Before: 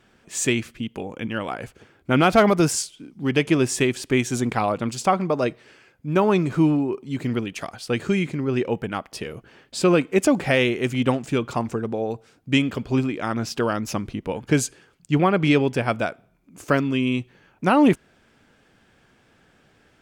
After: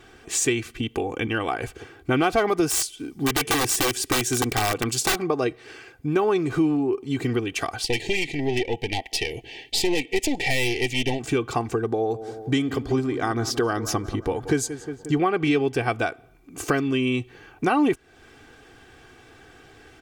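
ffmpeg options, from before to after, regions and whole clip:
-filter_complex "[0:a]asettb=1/sr,asplit=3[a][b][c];[a]atrim=end=2.704[d];[b]atrim=start=2.7:end=5.23,asetpts=PTS-STARTPTS,afade=t=in:d=0.004:c=qsin,afade=t=out:st=2.526:d=0.004:c=qsin,deesser=0.4,highshelf=f=7.9k:g=10.5,aeval=exprs='(mod(5.62*val(0)+1,2)-1)/5.62':c=same[e];[c]atrim=start=5.226[f];[d][e]acrossfade=d=0.004:c1=hsin:c2=qsin[g];[g][f]acrossfade=d=0.004:c1=qsin:c2=hsin,asettb=1/sr,asplit=3[h][i][j];[h]atrim=end=7.844[k];[i]atrim=start=7.84:end=11.2,asetpts=PTS-STARTPTS,afade=t=in:d=0.004:c=qsin,afade=t=out:st=3.356:d=0.004:c=qsin,equalizer=f=3.1k:t=o:w=2:g=12.5,aeval=exprs='(tanh(7.08*val(0)+0.7)-tanh(0.7))/7.08':c=same,asuperstop=centerf=1300:order=12:qfactor=1.7[l];[j]atrim=start=11.196[m];[k][l]acrossfade=d=0.004:c1=hsin:c2=qsin[n];[n][m]acrossfade=d=0.004:c1=qsin:c2=hsin,asettb=1/sr,asplit=3[o][p][q];[o]atrim=end=11.864[r];[p]atrim=start=11.86:end=15.18,asetpts=PTS-STARTPTS,afade=t=in:d=0.004:c=qsin,afade=t=out:st=3.316:d=0.004:c=qsin,equalizer=f=2.6k:t=o:w=0.34:g=-10,asplit=2[s][t];[t]adelay=178,lowpass=f=2.2k:p=1,volume=-16dB,asplit=2[u][v];[v]adelay=178,lowpass=f=2.2k:p=1,volume=0.54,asplit=2[w][x];[x]adelay=178,lowpass=f=2.2k:p=1,volume=0.54,asplit=2[y][z];[z]adelay=178,lowpass=f=2.2k:p=1,volume=0.54,asplit=2[aa][ab];[ab]adelay=178,lowpass=f=2.2k:p=1,volume=0.54[ac];[s][u][w][y][aa][ac]amix=inputs=6:normalize=0,atrim=end_sample=146412[ad];[q]atrim=start=15.176[ae];[r][ad]acrossfade=d=0.004:c1=hsin:c2=qsin[af];[af][ae]acrossfade=d=0.004:c1=qsin:c2=hsin,aecho=1:1:2.6:0.67,acompressor=threshold=-32dB:ratio=2.5,volume=7.5dB"

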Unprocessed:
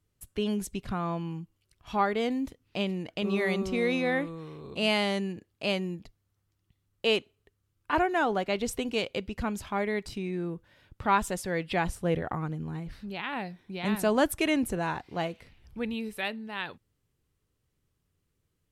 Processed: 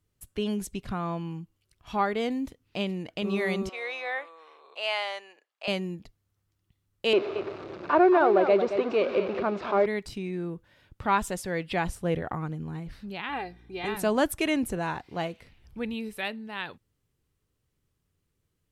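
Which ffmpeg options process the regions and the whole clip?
-filter_complex "[0:a]asettb=1/sr,asplit=3[a][b][c];[a]atrim=end=3.694[d];[b]atrim=start=3.69:end=5.68,asetpts=PTS-STARTPTS,afade=t=in:d=0.004:c=qsin,afade=t=out:st=1.986:d=0.004:c=qsin,highpass=f=640:w=0.5412,highpass=f=640:w=1.3066,aemphasis=mode=reproduction:type=50fm[e];[c]atrim=start=5.676[f];[d][e]acrossfade=d=0.004:c1=hsin:c2=qsin[g];[g][f]acrossfade=d=0.004:c1=qsin:c2=hsin,asettb=1/sr,asplit=3[h][i][j];[h]atrim=end=7.134[k];[i]atrim=start=7.13:end=9.86,asetpts=PTS-STARTPTS,afade=t=in:d=0.004:c=qsin,afade=t=out:st=2.726:d=0.004:c=qsin,aeval=exprs='val(0)+0.5*0.0335*sgn(val(0))':c=same,highpass=240,equalizer=f=250:t=q:w=4:g=-5,equalizer=f=370:t=q:w=4:g=10,equalizer=f=600:t=q:w=4:g=7,equalizer=f=1.2k:t=q:w=4:g=4,equalizer=f=1.9k:t=q:w=4:g=-6,equalizer=f=3.1k:t=q:w=4:g=-10,lowpass=f=3.4k:w=0.5412,lowpass=f=3.4k:w=1.3066,aecho=1:1:225:0.355,atrim=end_sample=120393[l];[j]atrim=start=9.856[m];[k][l]acrossfade=d=0.004:c1=hsin:c2=qsin[n];[n][m]acrossfade=d=0.004:c1=qsin:c2=hsin,asettb=1/sr,asplit=3[o][p][q];[o]atrim=end=13.294[r];[p]atrim=start=13.29:end=13.97,asetpts=PTS-STARTPTS,afade=t=in:d=0.004:c=qsin,afade=t=out:st=0.676:d=0.004:c=qsin,highshelf=f=5.5k:g=-6.5,aecho=1:1:2.5:0.75,atrim=end_sample=29988,aeval=exprs='val(0)+0.002*(sin(2*PI*60*n/s)+sin(2*PI*2*60*n/s)/2+sin(2*PI*3*60*n/s)/3+sin(2*PI*4*60*n/s)/4+sin(2*PI*5*60*n/s)/5)':c=same[s];[q]atrim=start=13.966[t];[r][s]acrossfade=d=0.004:c1=hsin:c2=qsin[u];[u][t]acrossfade=d=0.004:c1=qsin:c2=hsin"

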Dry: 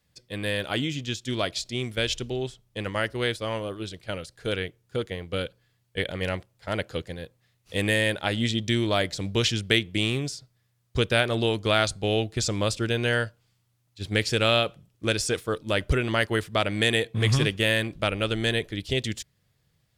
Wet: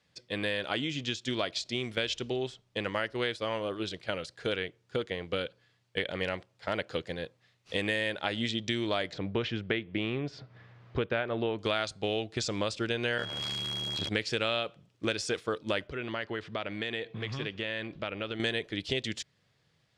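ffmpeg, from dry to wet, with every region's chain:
-filter_complex "[0:a]asettb=1/sr,asplit=3[a][b][c];[a]atrim=end=9.134[d];[b]atrim=start=9.13:end=11.59,asetpts=PTS-STARTPTS,afade=t=in:d=0.004:c=qsin,afade=t=out:st=2.456:d=0.004:c=qsin,lowpass=2k,acompressor=mode=upward:threshold=-34dB:ratio=2.5:attack=3.2:release=140:knee=2.83:detection=peak[e];[c]atrim=start=11.586[f];[d][e]acrossfade=d=0.004:c1=hsin:c2=qsin[g];[g][f]acrossfade=d=0.004:c1=qsin:c2=hsin,asettb=1/sr,asplit=3[h][i][j];[h]atrim=end=13.184[k];[i]atrim=start=13.18:end=14.09,asetpts=PTS-STARTPTS,afade=t=in:d=0.004:c=qsin,afade=t=out:st=0.906:d=0.004:c=qsin,aeval=exprs='val(0)+0.5*0.0398*sgn(val(0))':c=same,tremolo=f=73:d=0.889,aeval=exprs='val(0)+0.0178*sin(2*PI*3300*n/s)':c=same[l];[j]atrim=start=14.086[m];[k][l]acrossfade=d=0.004:c1=hsin:c2=qsin[n];[n][m]acrossfade=d=0.004:c1=qsin:c2=hsin,asettb=1/sr,asplit=3[o][p][q];[o]atrim=end=15.874[r];[p]atrim=start=15.87:end=18.4,asetpts=PTS-STARTPTS,afade=t=in:d=0.004:c=qsin,afade=t=out:st=2.526:d=0.004:c=qsin,lowpass=4.5k,acompressor=threshold=-37dB:ratio=2.5:attack=3.2:release=140:knee=1:detection=peak[s];[q]atrim=start=18.396[t];[r][s]acrossfade=d=0.004:c1=hsin:c2=qsin[u];[u][t]acrossfade=d=0.004:c1=qsin:c2=hsin,highpass=f=250:p=1,acompressor=threshold=-33dB:ratio=3,lowpass=5.5k,volume=3.5dB"

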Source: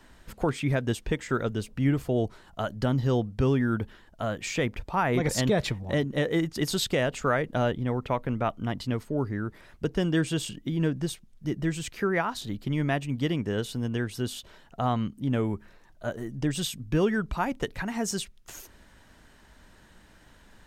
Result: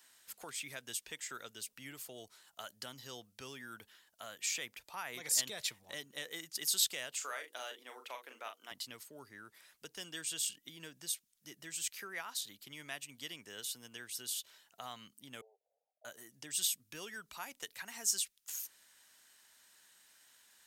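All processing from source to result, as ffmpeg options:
-filter_complex "[0:a]asettb=1/sr,asplit=3[a][b][c];[a]atrim=end=7.164[d];[b]atrim=start=7.16:end=8.71,asetpts=PTS-STARTPTS,afade=t=in:d=0.004:c=qsin,afade=t=out:st=1.546:d=0.004:c=qsin,highpass=f=310:w=0.5412,highpass=f=310:w=1.3066,bandreject=f=60:t=h:w=6,bandreject=f=120:t=h:w=6,bandreject=f=180:t=h:w=6,bandreject=f=240:t=h:w=6,bandreject=f=300:t=h:w=6,bandreject=f=360:t=h:w=6,bandreject=f=420:t=h:w=6,bandreject=f=480:t=h:w=6,asplit=2[e][f];[f]adelay=39,volume=-7dB[g];[e][g]amix=inputs=2:normalize=0,atrim=end_sample=68355[h];[c]atrim=start=8.706[i];[d][h]acrossfade=d=0.004:c1=hsin:c2=qsin[j];[j][i]acrossfade=d=0.004:c1=qsin:c2=hsin,asettb=1/sr,asplit=3[k][l][m];[k]atrim=end=15.414[n];[l]atrim=start=15.41:end=16.05,asetpts=PTS-STARTPTS,afade=t=in:d=0.004:c=qsin,afade=t=out:st=0.636:d=0.004:c=qsin,volume=27dB,asoftclip=hard,volume=-27dB,asuperpass=centerf=590:order=12:qfactor=1.7[o];[m]atrim=start=16.046[p];[n][o]acrossfade=d=0.004:c1=hsin:c2=qsin[q];[q][p]acrossfade=d=0.004:c1=qsin:c2=hsin,acrossover=split=130|3000[r][s][t];[s]acompressor=threshold=-31dB:ratio=1.5[u];[r][u][t]amix=inputs=3:normalize=0,aderivative,volume=2.5dB"

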